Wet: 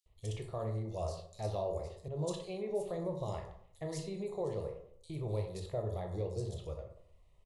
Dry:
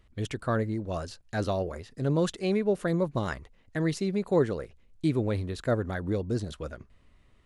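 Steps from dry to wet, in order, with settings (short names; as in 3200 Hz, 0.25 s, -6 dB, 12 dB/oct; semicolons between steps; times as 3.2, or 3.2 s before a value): limiter -21.5 dBFS, peak gain reduction 8 dB; fixed phaser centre 630 Hz, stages 4; bands offset in time highs, lows 60 ms, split 4100 Hz; reverb RT60 0.65 s, pre-delay 12 ms, DRR 3 dB; 2.08–2.7 three-band expander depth 40%; gain -5 dB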